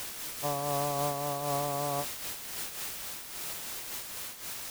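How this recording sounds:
a quantiser's noise floor 6 bits, dither triangular
amplitude modulation by smooth noise

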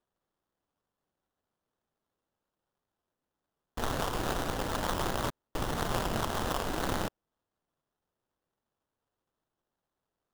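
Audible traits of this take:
phaser sweep stages 12, 0.4 Hz, lowest notch 160–3,200 Hz
aliases and images of a low sample rate 2,300 Hz, jitter 20%

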